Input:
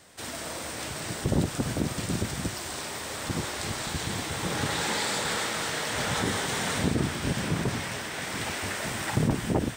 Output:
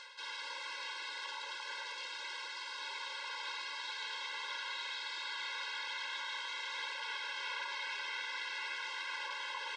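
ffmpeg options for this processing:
ffmpeg -i in.wav -filter_complex "[0:a]aecho=1:1:107:0.335,afftfilt=real='re*lt(hypot(re,im),0.112)':imag='im*lt(hypot(re,im),0.112)':win_size=1024:overlap=0.75,highshelf=frequency=3100:gain=8.5,asplit=2[link_01][link_02];[link_02]alimiter=limit=-17.5dB:level=0:latency=1:release=153,volume=2dB[link_03];[link_01][link_03]amix=inputs=2:normalize=0,highpass=frequency=720:width=0.5412,highpass=frequency=720:width=1.3066,areverse,acompressor=threshold=-34dB:ratio=20,areverse,asoftclip=type=tanh:threshold=-30.5dB,acompressor=mode=upward:threshold=-48dB:ratio=2.5,lowpass=frequency=4300:width=0.5412,lowpass=frequency=4300:width=1.3066,flanger=delay=2.9:depth=7.5:regen=-72:speed=1.3:shape=sinusoidal,afftfilt=real='re*eq(mod(floor(b*sr/1024/280),2),1)':imag='im*eq(mod(floor(b*sr/1024/280),2),1)':win_size=1024:overlap=0.75,volume=8dB" out.wav

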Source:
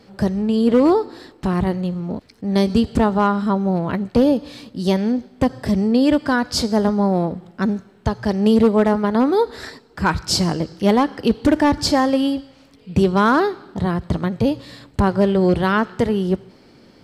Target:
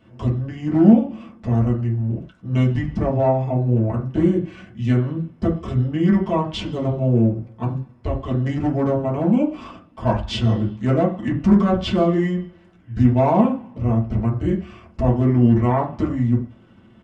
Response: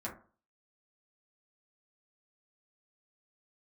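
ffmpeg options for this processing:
-filter_complex "[0:a]asetrate=28595,aresample=44100,atempo=1.54221[link_01];[1:a]atrim=start_sample=2205,afade=type=out:start_time=0.18:duration=0.01,atrim=end_sample=8379[link_02];[link_01][link_02]afir=irnorm=-1:irlink=0,volume=-3.5dB"

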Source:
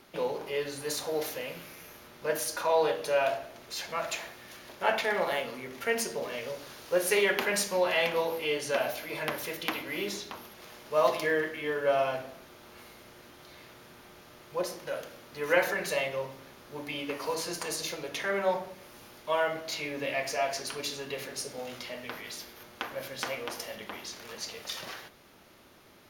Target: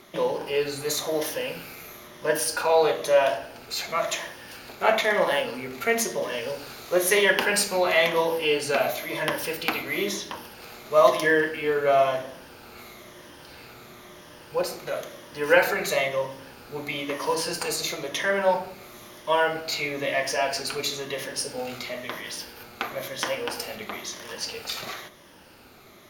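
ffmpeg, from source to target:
ffmpeg -i in.wav -af "afftfilt=real='re*pow(10,7/40*sin(2*PI*(1.2*log(max(b,1)*sr/1024/100)/log(2)-(-1)*(pts-256)/sr)))':imag='im*pow(10,7/40*sin(2*PI*(1.2*log(max(b,1)*sr/1024/100)/log(2)-(-1)*(pts-256)/sr)))':win_size=1024:overlap=0.75,volume=5.5dB" out.wav

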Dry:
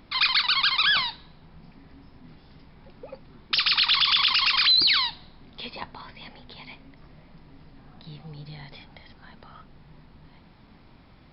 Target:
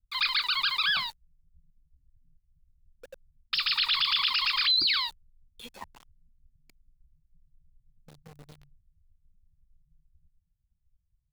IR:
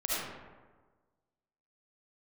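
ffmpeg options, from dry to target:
-filter_complex "[0:a]afftdn=noise_reduction=16:noise_floor=-35,acrossover=split=110[link_01][link_02];[link_02]aeval=exprs='val(0)*gte(abs(val(0)),0.0112)':channel_layout=same[link_03];[link_01][link_03]amix=inputs=2:normalize=0,volume=-5dB"

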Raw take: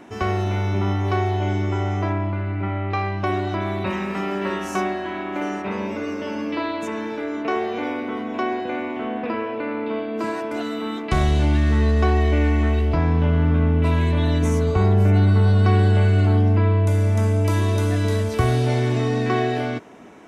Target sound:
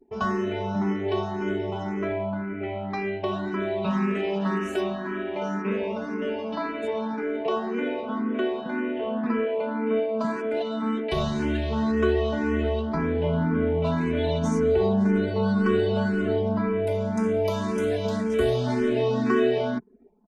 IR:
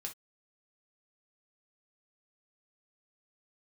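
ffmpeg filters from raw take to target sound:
-filter_complex "[0:a]anlmdn=6.31,highshelf=frequency=5500:gain=-7.5,aecho=1:1:4.7:0.92,adynamicequalizer=threshold=0.01:dfrequency=1700:dqfactor=0.76:tfrequency=1700:tqfactor=0.76:attack=5:release=100:ratio=0.375:range=1.5:mode=cutabove:tftype=bell,acrossover=split=170|460|3200[link_01][link_02][link_03][link_04];[link_01]asoftclip=type=tanh:threshold=-28dB[link_05];[link_05][link_02][link_03][link_04]amix=inputs=4:normalize=0,asplit=2[link_06][link_07];[link_07]afreqshift=1.9[link_08];[link_06][link_08]amix=inputs=2:normalize=1"

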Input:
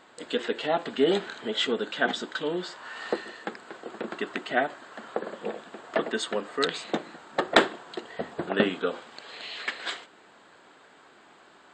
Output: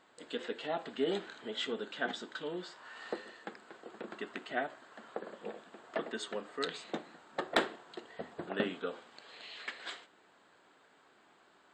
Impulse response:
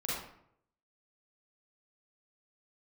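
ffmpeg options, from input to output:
-af "volume=6dB,asoftclip=hard,volume=-6dB,flanger=delay=9.8:depth=2.1:regen=-84:speed=1.8:shape=triangular,volume=-5.5dB"

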